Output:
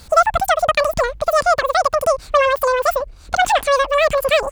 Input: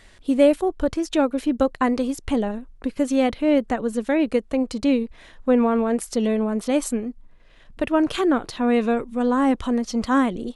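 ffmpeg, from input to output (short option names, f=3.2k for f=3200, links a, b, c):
-filter_complex "[0:a]asplit=2[a][b];[b]acompressor=threshold=-28dB:ratio=6,volume=-2dB[c];[a][c]amix=inputs=2:normalize=0,asetrate=103194,aresample=44100,volume=3dB"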